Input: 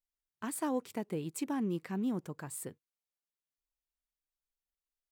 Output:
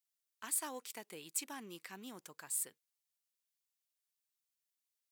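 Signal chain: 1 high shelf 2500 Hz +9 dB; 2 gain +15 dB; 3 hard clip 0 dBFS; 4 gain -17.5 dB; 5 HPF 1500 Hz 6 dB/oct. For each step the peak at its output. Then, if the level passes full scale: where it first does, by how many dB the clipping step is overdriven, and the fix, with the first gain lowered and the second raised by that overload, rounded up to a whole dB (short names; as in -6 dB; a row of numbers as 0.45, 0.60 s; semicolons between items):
-19.5, -4.5, -4.5, -22.0, -22.0 dBFS; no overload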